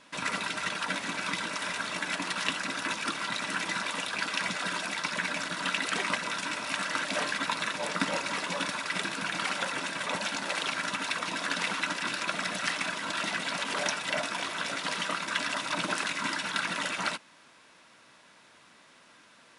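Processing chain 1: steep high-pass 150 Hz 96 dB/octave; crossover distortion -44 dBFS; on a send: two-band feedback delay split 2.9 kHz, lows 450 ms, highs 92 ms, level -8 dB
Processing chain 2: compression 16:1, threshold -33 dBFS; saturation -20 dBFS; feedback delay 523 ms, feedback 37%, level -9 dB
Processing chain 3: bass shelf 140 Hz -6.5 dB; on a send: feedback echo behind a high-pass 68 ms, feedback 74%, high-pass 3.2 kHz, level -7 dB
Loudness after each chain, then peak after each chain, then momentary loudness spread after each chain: -32.0 LUFS, -36.0 LUFS, -30.5 LUFS; -10.0 dBFS, -20.5 dBFS, -9.5 dBFS; 3 LU, 9 LU, 2 LU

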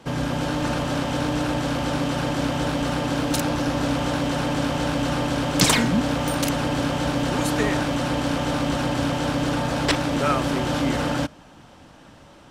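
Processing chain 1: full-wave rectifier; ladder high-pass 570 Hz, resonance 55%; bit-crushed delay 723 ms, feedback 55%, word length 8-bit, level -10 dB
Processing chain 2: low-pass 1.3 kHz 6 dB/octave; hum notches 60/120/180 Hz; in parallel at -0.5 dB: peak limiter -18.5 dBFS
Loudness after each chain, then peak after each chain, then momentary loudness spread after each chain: -35.0 LUFS, -20.5 LUFS; -17.0 dBFS, -6.0 dBFS; 5 LU, 2 LU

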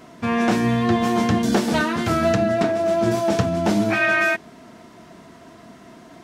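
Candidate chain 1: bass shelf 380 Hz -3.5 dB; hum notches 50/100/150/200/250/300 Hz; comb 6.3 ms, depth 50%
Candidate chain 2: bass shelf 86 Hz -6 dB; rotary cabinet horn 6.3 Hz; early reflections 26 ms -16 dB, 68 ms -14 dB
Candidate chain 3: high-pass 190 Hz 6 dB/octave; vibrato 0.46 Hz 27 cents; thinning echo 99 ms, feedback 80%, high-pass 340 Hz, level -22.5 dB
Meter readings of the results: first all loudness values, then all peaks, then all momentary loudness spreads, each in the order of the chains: -20.5 LUFS, -22.0 LUFS, -21.0 LUFS; -7.0 dBFS, -7.5 dBFS, -8.0 dBFS; 5 LU, 3 LU, 4 LU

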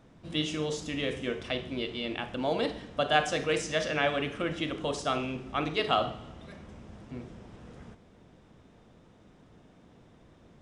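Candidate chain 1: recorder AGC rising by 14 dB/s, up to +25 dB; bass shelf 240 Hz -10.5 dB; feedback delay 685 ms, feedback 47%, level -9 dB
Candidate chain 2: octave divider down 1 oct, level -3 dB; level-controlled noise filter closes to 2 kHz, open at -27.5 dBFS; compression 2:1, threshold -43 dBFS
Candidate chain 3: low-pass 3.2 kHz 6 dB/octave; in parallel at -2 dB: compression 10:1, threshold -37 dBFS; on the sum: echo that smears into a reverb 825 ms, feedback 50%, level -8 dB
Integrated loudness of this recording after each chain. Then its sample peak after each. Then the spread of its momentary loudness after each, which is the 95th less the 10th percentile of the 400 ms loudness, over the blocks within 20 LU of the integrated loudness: -31.0 LUFS, -40.5 LUFS, -30.0 LUFS; -9.0 dBFS, -22.0 dBFS, -10.0 dBFS; 9 LU, 19 LU, 20 LU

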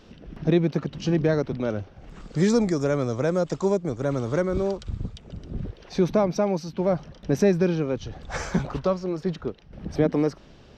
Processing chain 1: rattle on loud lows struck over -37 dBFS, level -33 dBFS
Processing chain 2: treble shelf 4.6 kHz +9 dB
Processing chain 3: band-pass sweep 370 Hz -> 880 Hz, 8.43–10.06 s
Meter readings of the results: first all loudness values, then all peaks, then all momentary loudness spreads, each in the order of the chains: -25.5 LUFS, -25.0 LUFS, -29.5 LUFS; -9.0 dBFS, -8.5 dBFS, -13.0 dBFS; 13 LU, 13 LU, 19 LU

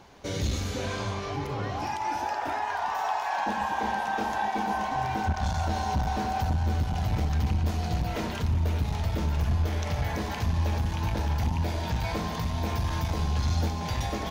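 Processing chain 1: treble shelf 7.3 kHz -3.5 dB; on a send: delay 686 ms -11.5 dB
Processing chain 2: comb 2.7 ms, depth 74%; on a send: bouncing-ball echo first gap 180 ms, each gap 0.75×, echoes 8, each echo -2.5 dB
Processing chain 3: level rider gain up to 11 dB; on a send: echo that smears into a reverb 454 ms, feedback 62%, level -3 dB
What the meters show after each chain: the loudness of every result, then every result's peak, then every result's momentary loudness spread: -29.0 LUFS, -23.5 LUFS, -16.0 LUFS; -15.5 dBFS, -8.5 dBFS, -1.5 dBFS; 3 LU, 5 LU, 4 LU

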